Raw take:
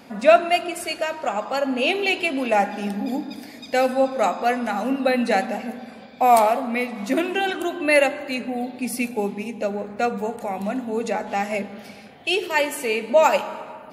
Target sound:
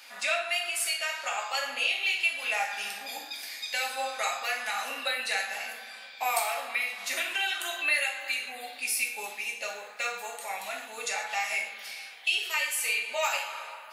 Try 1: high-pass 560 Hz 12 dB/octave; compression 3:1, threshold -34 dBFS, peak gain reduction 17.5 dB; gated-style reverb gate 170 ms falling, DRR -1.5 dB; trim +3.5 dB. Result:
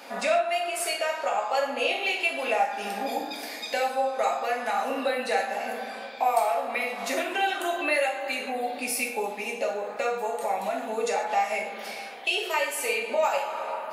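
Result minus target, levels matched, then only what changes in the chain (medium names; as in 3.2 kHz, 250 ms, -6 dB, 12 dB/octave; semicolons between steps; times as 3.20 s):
500 Hz band +10.0 dB
change: high-pass 2 kHz 12 dB/octave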